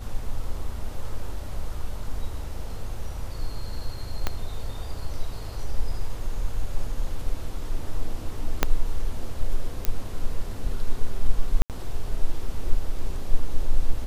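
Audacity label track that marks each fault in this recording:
4.270000	4.270000	pop -10 dBFS
8.630000	8.630000	pop -4 dBFS
9.850000	9.850000	pop -8 dBFS
11.620000	11.700000	dropout 78 ms

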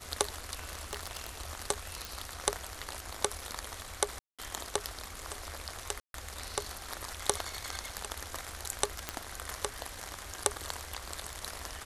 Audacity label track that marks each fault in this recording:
0.830000	1.270000	clipped -28.5 dBFS
2.050000	2.050000	pop
4.190000	4.390000	dropout 196 ms
6.000000	6.140000	dropout 142 ms
9.090000	9.090000	pop -15 dBFS

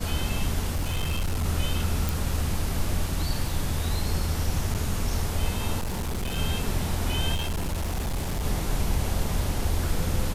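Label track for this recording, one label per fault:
0.740000	1.460000	clipped -22.5 dBFS
2.090000	2.090000	pop
4.740000	4.750000	dropout 8.7 ms
5.790000	6.380000	clipped -25.5 dBFS
7.340000	8.450000	clipped -24.5 dBFS

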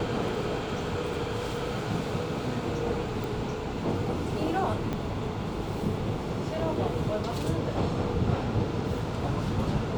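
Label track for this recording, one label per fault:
3.240000	3.240000	pop
4.930000	4.930000	pop -18 dBFS

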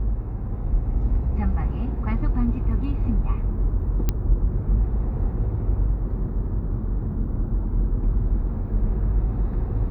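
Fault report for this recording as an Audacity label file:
4.090000	4.090000	pop -9 dBFS

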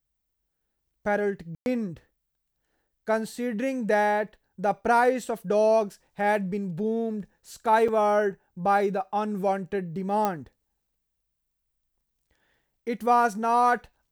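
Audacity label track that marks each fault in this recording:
1.550000	1.660000	dropout 111 ms
7.880000	7.880000	dropout 4.7 ms
10.250000	10.250000	pop -12 dBFS

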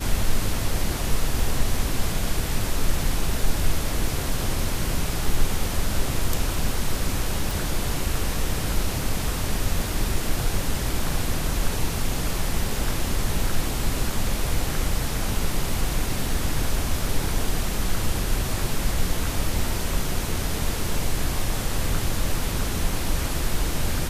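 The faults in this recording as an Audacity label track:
7.510000	7.510000	pop

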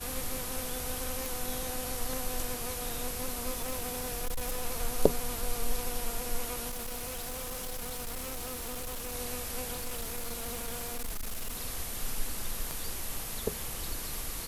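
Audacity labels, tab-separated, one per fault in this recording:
1.260000	1.260000	pop
3.510000	4.640000	clipped -28.5 dBFS
6.690000	9.150000	clipped -34 dBFS
9.720000	11.610000	clipped -31.5 dBFS
12.710000	12.710000	pop

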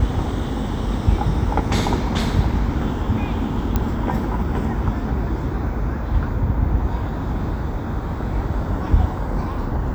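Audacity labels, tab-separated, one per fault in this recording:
3.760000	3.760000	pop -7 dBFS

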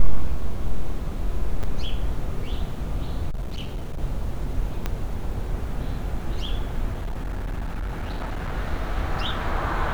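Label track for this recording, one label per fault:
1.630000	1.640000	dropout 6.4 ms
3.300000	3.990000	clipped -25 dBFS
4.860000	4.860000	pop -12 dBFS
6.930000	8.520000	clipped -25 dBFS

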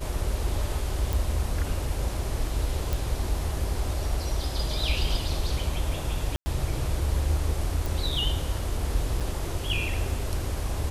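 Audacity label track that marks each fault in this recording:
1.130000	1.130000	pop
2.930000	2.930000	pop
6.360000	6.460000	dropout 100 ms
7.860000	7.860000	pop
9.200000	9.210000	dropout 6.4 ms

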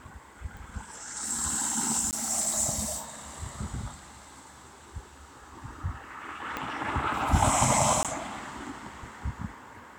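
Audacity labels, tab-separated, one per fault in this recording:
0.570000	0.570000	pop
2.110000	2.130000	dropout 18 ms
6.570000	6.570000	pop -17 dBFS
8.030000	8.050000	dropout 17 ms

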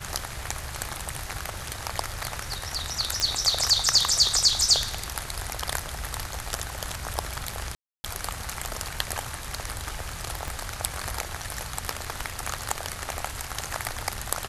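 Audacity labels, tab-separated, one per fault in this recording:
3.200000	3.200000	pop -8 dBFS
7.750000	8.040000	dropout 290 ms
10.480000	10.480000	pop

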